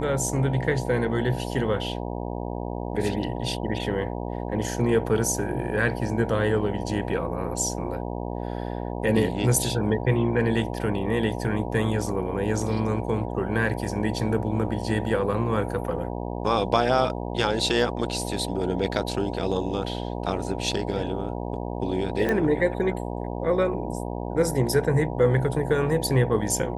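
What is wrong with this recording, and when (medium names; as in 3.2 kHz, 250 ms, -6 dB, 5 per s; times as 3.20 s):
buzz 60 Hz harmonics 16 -31 dBFS
22.29 s: pop -13 dBFS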